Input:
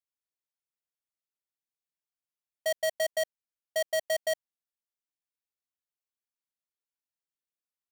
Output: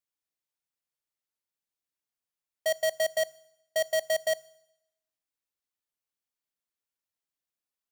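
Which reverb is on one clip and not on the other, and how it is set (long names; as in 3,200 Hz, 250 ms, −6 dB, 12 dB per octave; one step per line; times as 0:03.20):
feedback delay network reverb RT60 0.87 s, low-frequency decay 1×, high-frequency decay 1×, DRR 18 dB
level +1.5 dB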